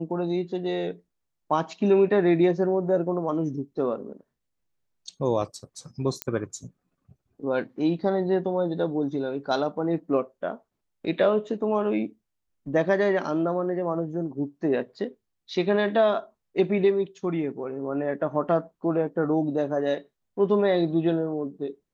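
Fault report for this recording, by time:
6.22 pop -11 dBFS

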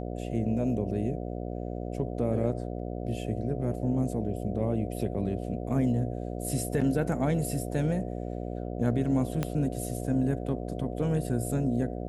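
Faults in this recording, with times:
buzz 60 Hz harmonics 12 -35 dBFS
9.43 pop -15 dBFS

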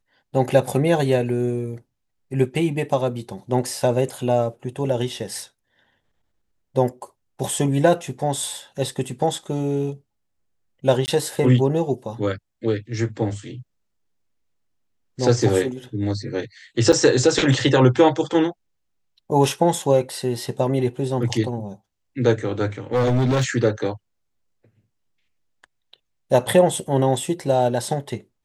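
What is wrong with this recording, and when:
11.06–11.08 gap 19 ms
16.92–16.93 gap 6.7 ms
22.93–23.5 clipped -15.5 dBFS

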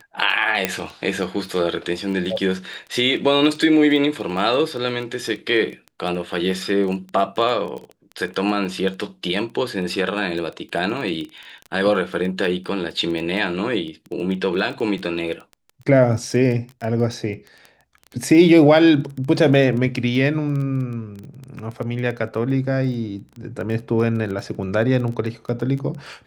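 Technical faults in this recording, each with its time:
crackle 13/s -27 dBFS
0.65 pop -3 dBFS

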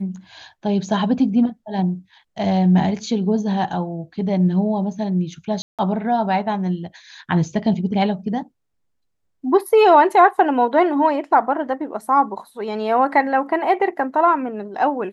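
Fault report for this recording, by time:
5.62–5.79 gap 0.167 s

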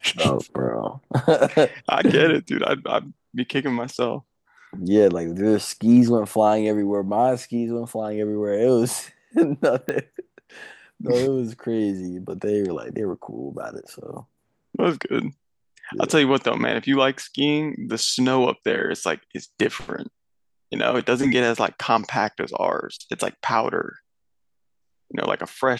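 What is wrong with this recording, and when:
9.89 pop -12 dBFS

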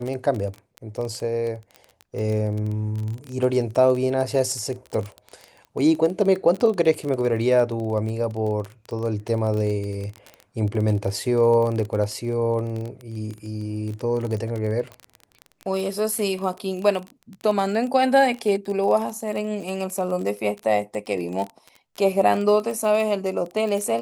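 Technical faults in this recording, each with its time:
crackle 22/s -27 dBFS

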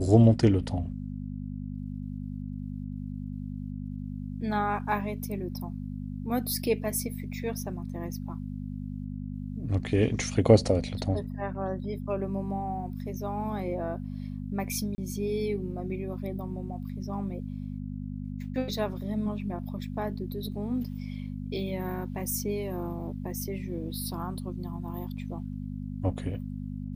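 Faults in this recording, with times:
hum 50 Hz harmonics 5 -36 dBFS
14.95–14.98 gap 30 ms

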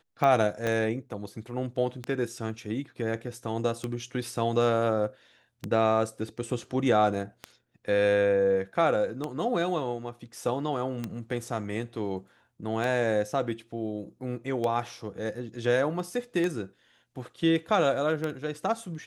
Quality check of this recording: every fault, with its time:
tick 33 1/3 rpm -17 dBFS
0.67 pop -16 dBFS

